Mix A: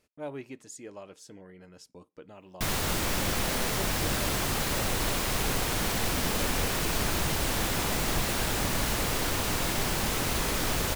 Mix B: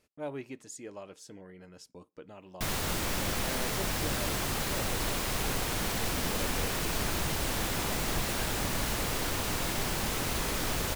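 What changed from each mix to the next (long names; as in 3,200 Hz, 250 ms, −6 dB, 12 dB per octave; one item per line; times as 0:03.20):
background −3.0 dB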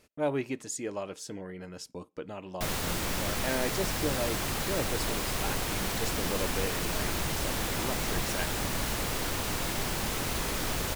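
speech +8.5 dB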